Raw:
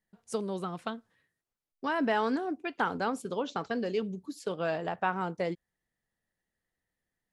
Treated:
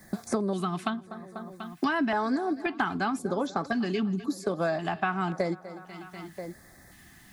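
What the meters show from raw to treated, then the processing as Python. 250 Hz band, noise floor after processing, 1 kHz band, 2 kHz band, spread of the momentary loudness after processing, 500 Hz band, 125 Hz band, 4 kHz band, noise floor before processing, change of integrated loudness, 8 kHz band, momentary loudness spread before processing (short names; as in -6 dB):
+5.5 dB, -54 dBFS, +2.5 dB, +3.5 dB, 15 LU, +1.5 dB, +6.5 dB, +3.0 dB, under -85 dBFS, +3.0 dB, +5.0 dB, 10 LU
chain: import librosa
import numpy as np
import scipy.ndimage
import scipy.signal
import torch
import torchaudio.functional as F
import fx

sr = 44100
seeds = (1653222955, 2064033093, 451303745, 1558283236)

y = fx.notch_comb(x, sr, f0_hz=470.0)
y = fx.echo_feedback(y, sr, ms=245, feedback_pct=48, wet_db=-20.5)
y = fx.filter_lfo_notch(y, sr, shape='square', hz=0.94, low_hz=520.0, high_hz=2900.0, q=1.3)
y = fx.band_squash(y, sr, depth_pct=100)
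y = y * librosa.db_to_amplitude(5.5)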